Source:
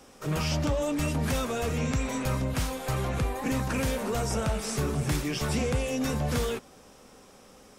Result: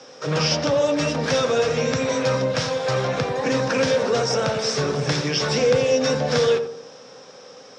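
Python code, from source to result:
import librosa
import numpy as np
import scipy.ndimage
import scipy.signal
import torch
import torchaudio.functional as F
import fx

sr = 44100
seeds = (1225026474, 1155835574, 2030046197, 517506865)

y = fx.cabinet(x, sr, low_hz=130.0, low_slope=24, high_hz=6000.0, hz=(210.0, 350.0, 500.0, 1600.0, 3700.0, 5400.0), db=(-9, -6, 9, 4, 4, 10))
y = fx.echo_filtered(y, sr, ms=86, feedback_pct=47, hz=850.0, wet_db=-6.0)
y = F.gain(torch.from_numpy(y), 6.5).numpy()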